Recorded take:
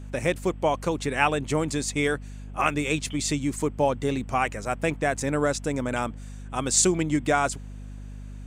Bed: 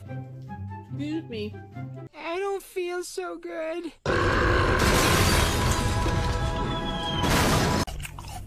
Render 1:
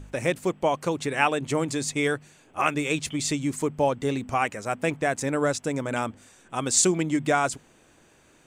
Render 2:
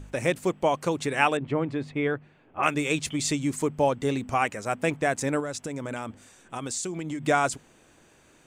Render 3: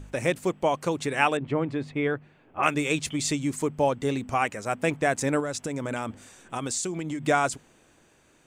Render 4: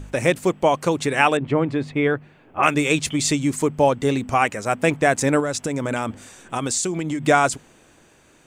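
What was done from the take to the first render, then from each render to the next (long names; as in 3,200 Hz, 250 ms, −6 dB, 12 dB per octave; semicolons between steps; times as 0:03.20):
hum removal 50 Hz, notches 5
0:01.37–0:02.63: high-frequency loss of the air 450 metres; 0:05.40–0:07.23: downward compressor, threshold −29 dBFS
speech leveller within 4 dB 2 s
level +6.5 dB; brickwall limiter −2 dBFS, peak gain reduction 2 dB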